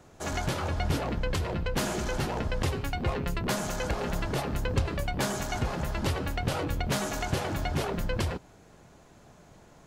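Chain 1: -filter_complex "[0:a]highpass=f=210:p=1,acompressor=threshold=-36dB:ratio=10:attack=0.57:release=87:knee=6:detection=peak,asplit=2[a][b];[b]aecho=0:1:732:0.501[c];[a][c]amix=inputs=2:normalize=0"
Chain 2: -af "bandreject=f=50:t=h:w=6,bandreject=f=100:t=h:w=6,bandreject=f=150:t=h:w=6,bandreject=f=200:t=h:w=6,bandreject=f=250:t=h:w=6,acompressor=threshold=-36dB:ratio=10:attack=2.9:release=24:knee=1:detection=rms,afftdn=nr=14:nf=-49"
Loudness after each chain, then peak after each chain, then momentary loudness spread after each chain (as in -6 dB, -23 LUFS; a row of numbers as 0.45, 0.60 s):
-41.5, -40.5 LUFS; -28.5, -28.5 dBFS; 7, 15 LU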